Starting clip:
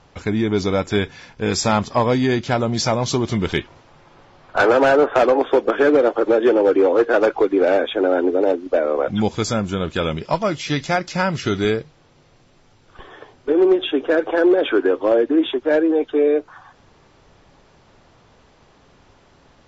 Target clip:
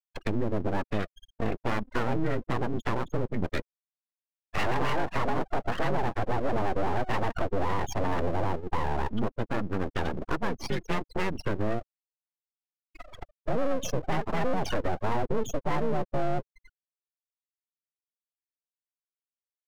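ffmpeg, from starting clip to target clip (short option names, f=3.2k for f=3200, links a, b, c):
-af "asoftclip=type=tanh:threshold=-15.5dB,highpass=f=180:t=q:w=0.5412,highpass=f=180:t=q:w=1.307,lowpass=f=3.5k:t=q:w=0.5176,lowpass=f=3.5k:t=q:w=0.7071,lowpass=f=3.5k:t=q:w=1.932,afreqshift=-97,acompressor=threshold=-39dB:ratio=2,afftfilt=real='re*gte(hypot(re,im),0.0355)':imag='im*gte(hypot(re,im),0.0355)':win_size=1024:overlap=0.75,aeval=exprs='0.0708*(cos(1*acos(clip(val(0)/0.0708,-1,1)))-cos(1*PI/2))+0.00447*(cos(6*acos(clip(val(0)/0.0708,-1,1)))-cos(6*PI/2))':c=same,aeval=exprs='abs(val(0))':c=same,adynamicequalizer=threshold=0.00224:dfrequency=250:dqfactor=0.89:tfrequency=250:tqfactor=0.89:attack=5:release=100:ratio=0.375:range=1.5:mode=boostabove:tftype=bell,volume=6.5dB"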